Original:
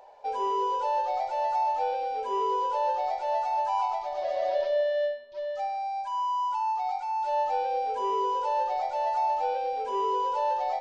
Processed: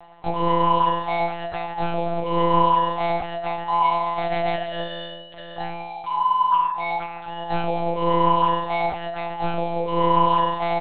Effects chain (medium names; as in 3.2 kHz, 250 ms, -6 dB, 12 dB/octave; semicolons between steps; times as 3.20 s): treble shelf 3 kHz +8.5 dB; comb 4.1 ms, depth 55%; simulated room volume 3000 m³, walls furnished, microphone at 3.3 m; monotone LPC vocoder at 8 kHz 170 Hz; trim +1 dB